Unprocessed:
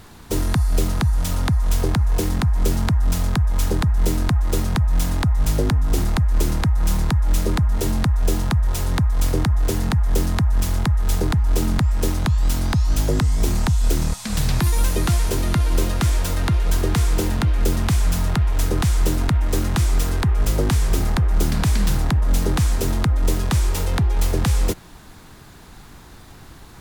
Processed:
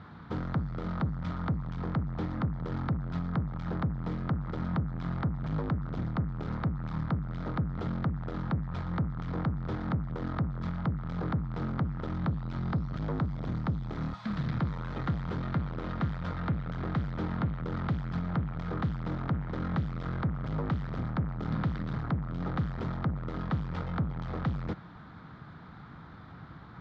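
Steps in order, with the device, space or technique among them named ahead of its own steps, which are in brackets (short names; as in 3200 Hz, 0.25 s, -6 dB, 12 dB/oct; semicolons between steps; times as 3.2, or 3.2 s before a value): guitar amplifier (tube stage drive 24 dB, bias 0.25; tone controls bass +5 dB, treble -9 dB; speaker cabinet 100–3900 Hz, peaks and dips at 160 Hz +5 dB, 380 Hz -5 dB, 1300 Hz +8 dB, 2700 Hz -9 dB); gain -5 dB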